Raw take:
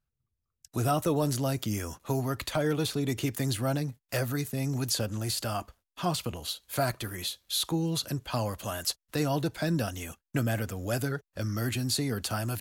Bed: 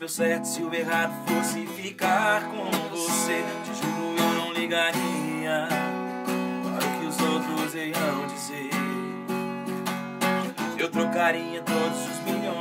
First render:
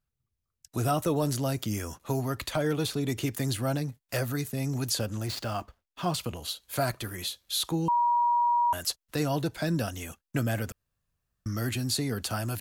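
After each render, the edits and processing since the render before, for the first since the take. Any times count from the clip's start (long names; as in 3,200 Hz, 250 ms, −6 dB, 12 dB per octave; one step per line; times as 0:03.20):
0:05.26–0:06.14: running median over 5 samples
0:07.88–0:08.73: beep over 956 Hz −21 dBFS
0:10.72–0:11.46: fill with room tone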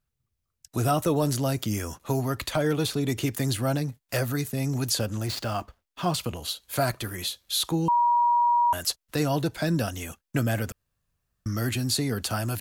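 level +3 dB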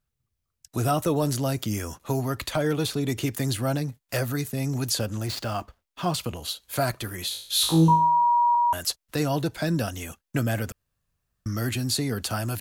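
0:07.29–0:08.55: flutter between parallel walls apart 3.2 metres, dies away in 0.53 s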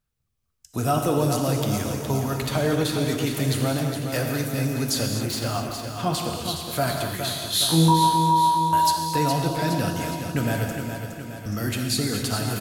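repeating echo 415 ms, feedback 56%, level −7.5 dB
reverb whose tail is shaped and stops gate 280 ms flat, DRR 2.5 dB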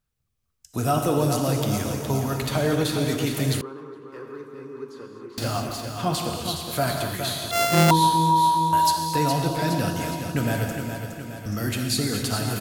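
0:03.61–0:05.38: pair of resonant band-passes 660 Hz, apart 1.4 octaves
0:07.51–0:07.91: samples sorted by size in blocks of 64 samples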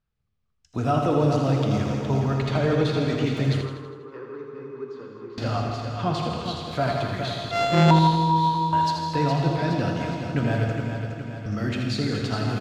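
high-frequency loss of the air 170 metres
repeating echo 81 ms, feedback 57%, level −7.5 dB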